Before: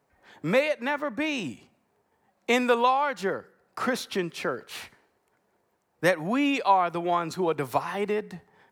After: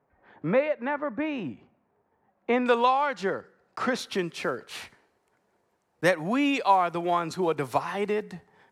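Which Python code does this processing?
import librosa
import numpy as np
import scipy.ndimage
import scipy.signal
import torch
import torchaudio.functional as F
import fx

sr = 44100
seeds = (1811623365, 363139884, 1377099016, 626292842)

y = fx.block_float(x, sr, bits=7)
y = fx.lowpass(y, sr, hz=fx.steps((0.0, 1700.0), (2.66, 6800.0), (3.99, 11000.0)), slope=12)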